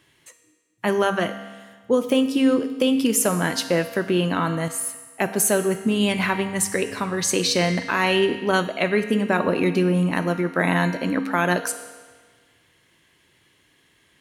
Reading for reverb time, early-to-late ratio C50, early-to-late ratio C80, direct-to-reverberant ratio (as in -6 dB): 1.5 s, 9.5 dB, 11.0 dB, 7.5 dB